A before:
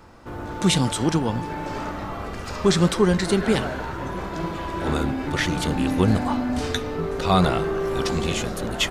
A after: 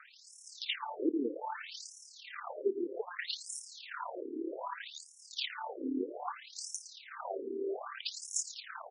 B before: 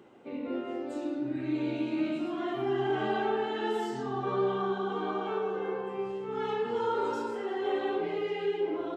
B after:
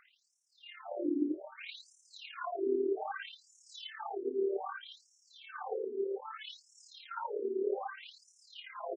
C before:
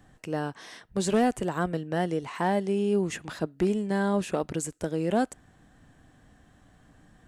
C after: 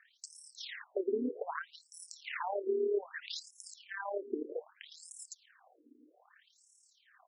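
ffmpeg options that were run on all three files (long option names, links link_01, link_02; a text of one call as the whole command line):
ffmpeg -i in.wav -filter_complex "[0:a]asubboost=boost=6:cutoff=110,crystalizer=i=1.5:c=0,acompressor=threshold=-29dB:ratio=3,aeval=exprs='val(0)+0.00224*(sin(2*PI*60*n/s)+sin(2*PI*2*60*n/s)/2+sin(2*PI*3*60*n/s)/3+sin(2*PI*4*60*n/s)/4+sin(2*PI*5*60*n/s)/5)':channel_layout=same,tremolo=f=36:d=0.571,acrossover=split=430|3000[link_01][link_02][link_03];[link_02]acompressor=threshold=-39dB:ratio=6[link_04];[link_01][link_04][link_03]amix=inputs=3:normalize=0,aecho=1:1:112|224|336|448:0.188|0.0866|0.0399|0.0183,afftfilt=real='re*between(b*sr/1024,320*pow(7600/320,0.5+0.5*sin(2*PI*0.63*pts/sr))/1.41,320*pow(7600/320,0.5+0.5*sin(2*PI*0.63*pts/sr))*1.41)':imag='im*between(b*sr/1024,320*pow(7600/320,0.5+0.5*sin(2*PI*0.63*pts/sr))/1.41,320*pow(7600/320,0.5+0.5*sin(2*PI*0.63*pts/sr))*1.41)':win_size=1024:overlap=0.75,volume=6dB" out.wav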